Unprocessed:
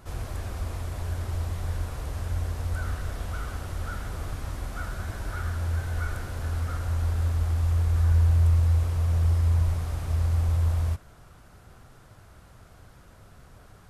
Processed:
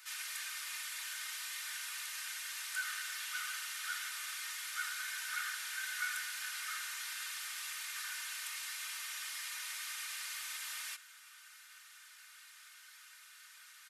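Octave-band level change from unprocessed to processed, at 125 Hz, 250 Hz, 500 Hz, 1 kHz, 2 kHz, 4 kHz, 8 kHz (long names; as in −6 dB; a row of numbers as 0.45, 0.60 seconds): below −40 dB, below −40 dB, below −30 dB, −8.0 dB, +3.5 dB, +7.0 dB, +7.0 dB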